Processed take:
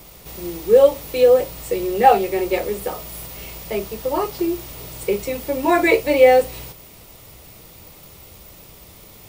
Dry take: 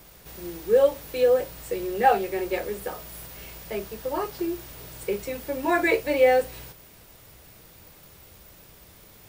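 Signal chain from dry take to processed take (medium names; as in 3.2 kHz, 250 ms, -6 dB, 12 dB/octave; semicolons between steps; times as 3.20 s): peaking EQ 1.6 kHz -9 dB 0.28 oct; trim +7 dB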